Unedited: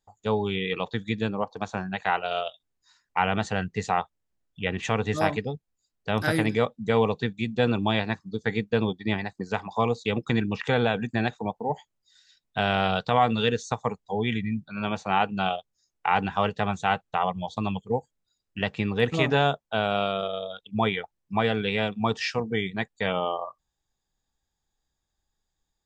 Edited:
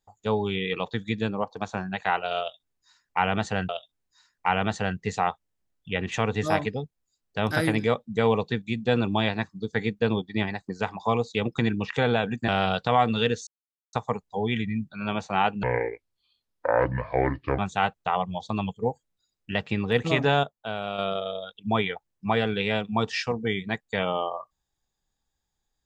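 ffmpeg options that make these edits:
ffmpeg -i in.wav -filter_complex "[0:a]asplit=8[link_01][link_02][link_03][link_04][link_05][link_06][link_07][link_08];[link_01]atrim=end=3.692[link_09];[link_02]atrim=start=2.398:end=11.192[link_10];[link_03]atrim=start=12.698:end=13.69,asetpts=PTS-STARTPTS,afade=type=out:start_time=0.988:duration=0.004:curve=hsin,apad=pad_dur=0.46[link_11];[link_04]atrim=start=13.69:end=15.394,asetpts=PTS-STARTPTS,afade=type=in:duration=0.004:curve=hsin[link_12];[link_05]atrim=start=15.39:end=16.66,asetpts=PTS-STARTPTS,asetrate=28665,aresample=44100[link_13];[link_06]atrim=start=16.656:end=19.512[link_14];[link_07]atrim=start=19.508:end=20.062,asetpts=PTS-STARTPTS,volume=-6.5dB[link_15];[link_08]atrim=start=20.058[link_16];[link_09][link_10]acrossfade=duration=0.004:curve1=hsin:curve2=hsin[link_17];[link_11][link_12]concat=n=2:v=0:a=1[link_18];[link_17][link_18]acrossfade=duration=0.004:curve1=hsin:curve2=hsin[link_19];[link_19][link_13]acrossfade=duration=0.004:curve1=hsin:curve2=hsin[link_20];[link_20][link_14]acrossfade=duration=0.004:curve1=hsin:curve2=hsin[link_21];[link_21][link_15]acrossfade=duration=0.004:curve1=hsin:curve2=hsin[link_22];[link_22][link_16]acrossfade=duration=0.004:curve1=hsin:curve2=hsin" out.wav

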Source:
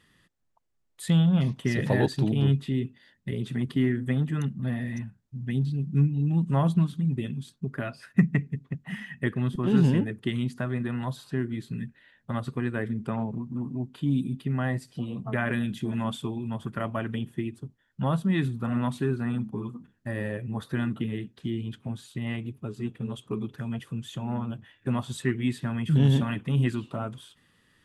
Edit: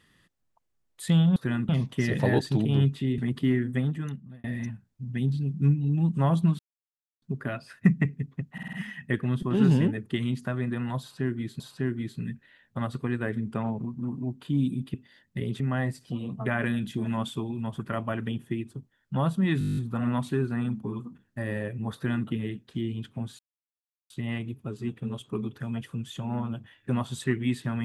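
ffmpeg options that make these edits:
ffmpeg -i in.wav -filter_complex "[0:a]asplit=24[link_01][link_02][link_03][link_04][link_05][link_06][link_07][link_08][link_09][link_10][link_11][link_12][link_13][link_14][link_15][link_16][link_17][link_18][link_19][link_20][link_21][link_22][link_23][link_24];[link_01]atrim=end=1.362[link_25];[link_02]atrim=start=20.638:end=20.972[link_26];[link_03]atrim=start=1.358:end=2.852[link_27];[link_04]atrim=start=3.508:end=4.77,asetpts=PTS-STARTPTS,afade=type=out:start_time=0.572:duration=0.69[link_28];[link_05]atrim=start=4.77:end=6.92,asetpts=PTS-STARTPTS,afade=type=in:duration=0.004:curve=hsin,afade=type=out:start_time=2.146:duration=0.004:curve=hsin[link_29];[link_06]atrim=start=6.92:end=7.55,asetpts=PTS-STARTPTS,volume=0[link_30];[link_07]atrim=start=7.55:end=8.912,asetpts=PTS-STARTPTS,afade=type=in:duration=0.004:curve=hsin[link_31];[link_08]atrim=start=8.858:end=8.912[link_32];[link_09]atrim=start=8.858:end=8.912[link_33];[link_10]atrim=start=8.858:end=8.912[link_34];[link_11]atrim=start=8.858:end=11.732[link_35];[link_12]atrim=start=11.128:end=14.472[link_36];[link_13]atrim=start=2.848:end=3.512[link_37];[link_14]atrim=start=14.468:end=18.482[link_38];[link_15]atrim=start=18.458:end=18.482[link_39];[link_16]atrim=start=18.458:end=18.482[link_40];[link_17]atrim=start=18.458:end=18.482[link_41];[link_18]atrim=start=18.458:end=18.482[link_42];[link_19]atrim=start=18.458:end=18.482[link_43];[link_20]atrim=start=18.458:end=18.482[link_44];[link_21]atrim=start=18.458:end=18.482[link_45];[link_22]atrim=start=18.458:end=18.482[link_46];[link_23]atrim=start=18.458:end=22.08,asetpts=PTS-STARTPTS,afade=type=out:start_time=3.618:duration=0.004:curve=hsin,apad=pad_dur=0.71[link_47];[link_24]atrim=start=22.08,asetpts=PTS-STARTPTS,afade=type=in:duration=0.004:curve=hsin[link_48];[link_25][link_26]acrossfade=duration=0.004:curve1=hsin:curve2=hsin[link_49];[link_49][link_27]acrossfade=duration=0.004:curve1=hsin:curve2=hsin[link_50];[link_28][link_29][link_30][link_31]concat=n=4:v=0:a=1[link_51];[link_50][link_51]acrossfade=duration=0.004:curve1=hsin:curve2=hsin[link_52];[link_52][link_32]acrossfade=duration=0.004:curve1=hsin:curve2=hsin[link_53];[link_53][link_33]acrossfade=duration=0.004:curve1=hsin:curve2=hsin[link_54];[link_54][link_34]acrossfade=duration=0.004:curve1=hsin:curve2=hsin[link_55];[link_55][link_35]acrossfade=duration=0.004:curve1=hsin:curve2=hsin[link_56];[link_56][link_36]acrossfade=duration=0.004:curve1=hsin:curve2=hsin[link_57];[link_57][link_37]acrossfade=duration=0.004:curve1=hsin:curve2=hsin[link_58];[link_58][link_38]acrossfade=duration=0.004:curve1=hsin:curve2=hsin[link_59];[link_59][link_39]acrossfade=duration=0.004:curve1=hsin:curve2=hsin[link_60];[link_60][link_40]acrossfade=duration=0.004:curve1=hsin:curve2=hsin[link_61];[link_61][link_41]acrossfade=duration=0.004:curve1=hsin:curve2=hsin[link_62];[link_62][link_42]acrossfade=duration=0.004:curve1=hsin:curve2=hsin[link_63];[link_63][link_43]acrossfade=duration=0.004:curve1=hsin:curve2=hsin[link_64];[link_64][link_44]acrossfade=duration=0.004:curve1=hsin:curve2=hsin[link_65];[link_65][link_45]acrossfade=duration=0.004:curve1=hsin:curve2=hsin[link_66];[link_66][link_46]acrossfade=duration=0.004:curve1=hsin:curve2=hsin[link_67];[link_47][link_48]concat=n=2:v=0:a=1[link_68];[link_67][link_68]acrossfade=duration=0.004:curve1=hsin:curve2=hsin" out.wav

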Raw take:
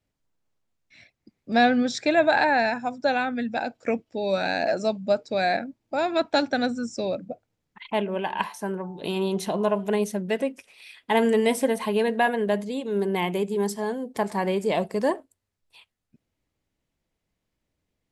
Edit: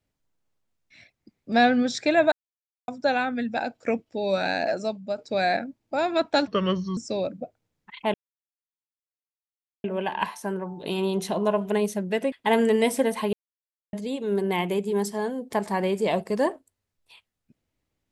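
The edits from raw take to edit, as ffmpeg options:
ffmpeg -i in.wav -filter_complex "[0:a]asplit=10[link_01][link_02][link_03][link_04][link_05][link_06][link_07][link_08][link_09][link_10];[link_01]atrim=end=2.32,asetpts=PTS-STARTPTS,afade=type=out:start_time=2.316:duration=0.004:curve=hsin[link_11];[link_02]atrim=start=2.32:end=2.88,asetpts=PTS-STARTPTS,volume=0[link_12];[link_03]atrim=start=2.88:end=5.18,asetpts=PTS-STARTPTS,afade=type=in:duration=0.004:curve=hsin,afade=type=out:start_time=1.62:duration=0.68:silence=0.375837[link_13];[link_04]atrim=start=5.18:end=6.474,asetpts=PTS-STARTPTS,afade=type=in:duration=0.004:curve=hsin:silence=0.375837[link_14];[link_05]atrim=start=6.47:end=6.85,asetpts=PTS-STARTPTS,asetrate=33516,aresample=44100[link_15];[link_06]atrim=start=6.846:end=8.02,asetpts=PTS-STARTPTS,afade=type=out:start_time=1.17:duration=0.004:curve=hsin,apad=pad_dur=1.7[link_16];[link_07]atrim=start=8.02:end=10.502,asetpts=PTS-STARTPTS,afade=type=in:duration=0.004:curve=hsin[link_17];[link_08]atrim=start=10.958:end=11.97,asetpts=PTS-STARTPTS,afade=type=out:start_time=1.008:duration=0.004:curve=hsin[link_18];[link_09]atrim=start=11.97:end=12.57,asetpts=PTS-STARTPTS,volume=0[link_19];[link_10]atrim=start=12.57,asetpts=PTS-STARTPTS,afade=type=in:duration=0.004:curve=hsin[link_20];[link_11][link_12][link_13][link_14]concat=n=4:v=0:a=1[link_21];[link_21][link_15]acrossfade=duration=0.004:curve1=hsin:curve2=hsin[link_22];[link_16][link_17]concat=n=2:v=0:a=1[link_23];[link_22][link_23]acrossfade=duration=0.004:curve1=hsin:curve2=hsin[link_24];[link_18][link_19][link_20]concat=n=3:v=0:a=1[link_25];[link_24][link_25]acrossfade=duration=0.004:curve1=hsin:curve2=hsin" out.wav

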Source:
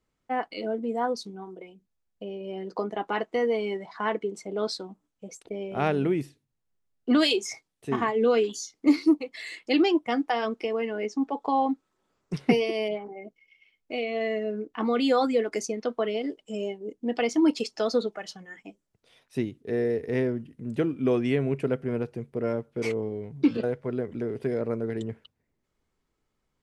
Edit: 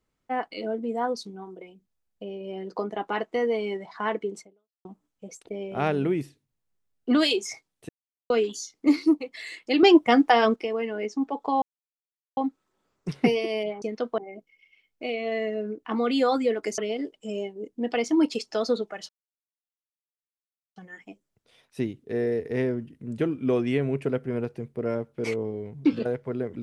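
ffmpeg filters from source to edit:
ffmpeg -i in.wav -filter_complex "[0:a]asplit=11[link_01][link_02][link_03][link_04][link_05][link_06][link_07][link_08][link_09][link_10][link_11];[link_01]atrim=end=4.85,asetpts=PTS-STARTPTS,afade=type=out:start_time=4.4:duration=0.45:curve=exp[link_12];[link_02]atrim=start=4.85:end=7.89,asetpts=PTS-STARTPTS,afade=type=in:duration=0.004:curve=hsin,afade=type=out:start_time=3.036:duration=0.004:curve=hsin[link_13];[link_03]atrim=start=7.89:end=8.3,asetpts=PTS-STARTPTS,volume=0[link_14];[link_04]atrim=start=8.3:end=9.832,asetpts=PTS-STARTPTS,afade=type=in:duration=0.004:curve=hsin[link_15];[link_05]atrim=start=9.828:end=10.562,asetpts=PTS-STARTPTS,volume=8dB[link_16];[link_06]atrim=start=10.558:end=11.62,asetpts=PTS-STARTPTS,afade=type=out:start_time=1.058:duration=0.004:curve=hsin,apad=pad_dur=0.75[link_17];[link_07]atrim=start=11.62:end=13.072,asetpts=PTS-STARTPTS,afade=type=in:duration=0.004:curve=hsin[link_18];[link_08]atrim=start=15.668:end=16.032[link_19];[link_09]atrim=start=13.068:end=15.672[link_20];[link_10]atrim=start=16.028:end=18.34,asetpts=PTS-STARTPTS,afade=type=out:start_time=2.308:duration=0.004:curve=hsin,apad=pad_dur=1.67[link_21];[link_11]atrim=start=18.34,asetpts=PTS-STARTPTS,afade=type=in:duration=0.004:curve=hsin[link_22];[link_12][link_13][link_14][link_15]concat=n=4:v=0:a=1[link_23];[link_23][link_16]acrossfade=duration=0.004:curve1=hsin:curve2=hsin[link_24];[link_17][link_18]concat=n=2:v=0:a=1[link_25];[link_24][link_25]acrossfade=duration=0.004:curve1=hsin:curve2=hsin[link_26];[link_26][link_19]acrossfade=duration=0.004:curve1=hsin:curve2=hsin[link_27];[link_27][link_20]acrossfade=duration=0.004:curve1=hsin:curve2=hsin[link_28];[link_21][link_22]concat=n=2:v=0:a=1[link_29];[link_28][link_29]acrossfade=duration=0.004:curve1=hsin:curve2=hsin" out.wav

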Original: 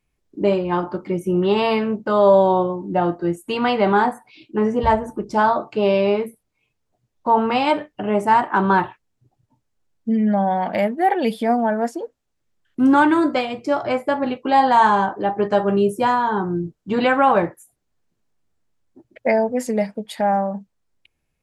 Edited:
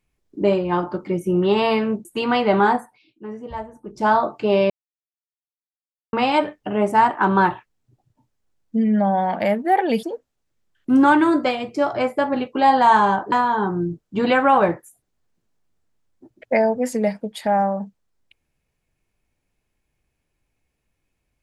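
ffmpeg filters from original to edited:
ffmpeg -i in.wav -filter_complex "[0:a]asplit=8[link_01][link_02][link_03][link_04][link_05][link_06][link_07][link_08];[link_01]atrim=end=2.052[link_09];[link_02]atrim=start=3.378:end=4.37,asetpts=PTS-STARTPTS,afade=type=out:start_time=0.712:duration=0.28:silence=0.199526[link_10];[link_03]atrim=start=4.37:end=5.15,asetpts=PTS-STARTPTS,volume=-14dB[link_11];[link_04]atrim=start=5.15:end=6.03,asetpts=PTS-STARTPTS,afade=type=in:duration=0.28:silence=0.199526,afade=type=out:start_time=0.876:duration=0.004:curve=hsin[link_12];[link_05]atrim=start=6.03:end=7.46,asetpts=PTS-STARTPTS,volume=0[link_13];[link_06]atrim=start=7.46:end=11.362,asetpts=PTS-STARTPTS,afade=type=in:duration=0.004:curve=hsin[link_14];[link_07]atrim=start=11.928:end=15.222[link_15];[link_08]atrim=start=16.058[link_16];[link_10][link_11][link_12][link_13][link_14]concat=n=5:v=0:a=1[link_17];[link_09][link_17]acrossfade=duration=0.004:curve1=hsin:curve2=hsin[link_18];[link_18][link_15]acrossfade=duration=0.004:curve1=hsin:curve2=hsin[link_19];[link_19][link_16]acrossfade=duration=0.004:curve1=hsin:curve2=hsin" out.wav

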